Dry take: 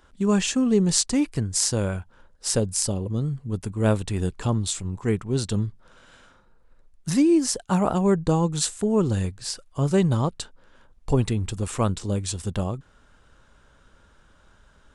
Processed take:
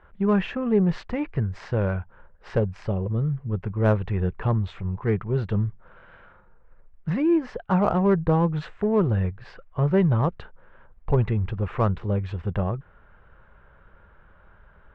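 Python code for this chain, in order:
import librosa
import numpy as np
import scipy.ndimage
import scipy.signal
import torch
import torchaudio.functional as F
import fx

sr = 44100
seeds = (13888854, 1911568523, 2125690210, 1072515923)

p1 = scipy.signal.sosfilt(scipy.signal.butter(4, 2200.0, 'lowpass', fs=sr, output='sos'), x)
p2 = fx.peak_eq(p1, sr, hz=270.0, db=-13.5, octaves=0.33)
p3 = 10.0 ** (-26.0 / 20.0) * np.tanh(p2 / 10.0 ** (-26.0 / 20.0))
y = p2 + (p3 * 10.0 ** (-6.0 / 20.0))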